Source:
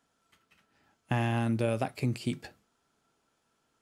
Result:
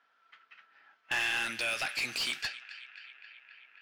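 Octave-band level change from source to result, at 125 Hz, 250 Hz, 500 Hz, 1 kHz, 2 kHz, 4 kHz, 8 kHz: −26.0, −18.5, −11.5, −4.5, +9.5, +12.0, +9.0 decibels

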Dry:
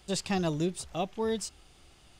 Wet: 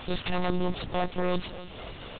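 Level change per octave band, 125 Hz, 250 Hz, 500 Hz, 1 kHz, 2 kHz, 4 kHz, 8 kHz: +1.5 dB, +0.5 dB, +1.0 dB, +4.0 dB, +5.0 dB, +2.0 dB, below −40 dB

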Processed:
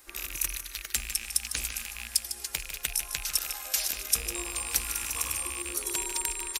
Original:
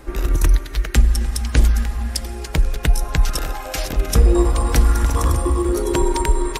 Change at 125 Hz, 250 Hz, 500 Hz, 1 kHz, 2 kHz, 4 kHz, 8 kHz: −29.5, −24.5, −23.0, −16.0, −6.0, −2.5, +1.5 decibels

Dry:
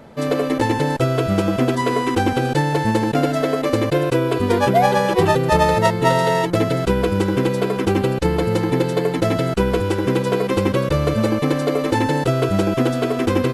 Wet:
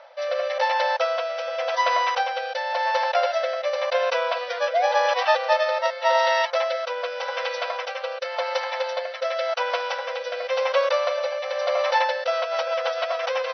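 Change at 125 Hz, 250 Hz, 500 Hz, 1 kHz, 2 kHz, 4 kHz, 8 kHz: below −40 dB, below −40 dB, −4.5 dB, −2.0 dB, −0.5 dB, 0.0 dB, −8.5 dB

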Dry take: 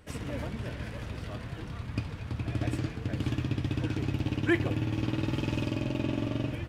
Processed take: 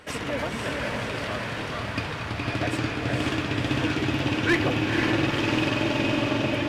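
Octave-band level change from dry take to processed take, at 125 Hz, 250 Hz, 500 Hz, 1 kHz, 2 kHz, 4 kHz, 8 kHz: +1.5, +6.0, +9.0, +13.0, +12.0, +13.0, +11.0 decibels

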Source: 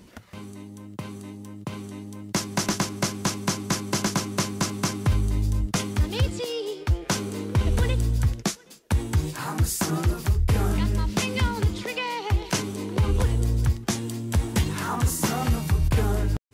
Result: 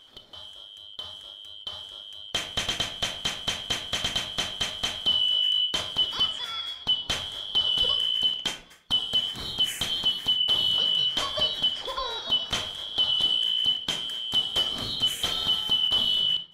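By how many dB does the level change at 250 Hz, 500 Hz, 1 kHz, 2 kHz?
−16.5, −9.5, −6.5, −4.0 decibels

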